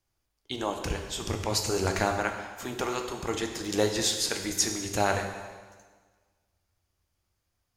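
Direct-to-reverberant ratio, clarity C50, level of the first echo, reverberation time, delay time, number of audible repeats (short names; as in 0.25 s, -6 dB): 4.0 dB, 6.5 dB, none, 1.5 s, none, none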